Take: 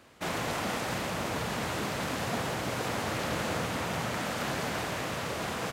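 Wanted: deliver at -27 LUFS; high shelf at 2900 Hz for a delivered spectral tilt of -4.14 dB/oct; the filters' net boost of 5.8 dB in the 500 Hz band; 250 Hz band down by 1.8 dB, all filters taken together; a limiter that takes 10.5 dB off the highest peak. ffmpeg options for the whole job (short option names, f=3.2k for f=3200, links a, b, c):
-af "equalizer=f=250:t=o:g=-5,equalizer=f=500:t=o:g=8,highshelf=f=2.9k:g=3.5,volume=8.5dB,alimiter=limit=-18.5dB:level=0:latency=1"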